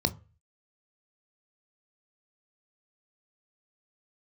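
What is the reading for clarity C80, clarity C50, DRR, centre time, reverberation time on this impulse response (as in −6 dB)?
25.5 dB, 20.0 dB, 10.0 dB, 4 ms, 0.35 s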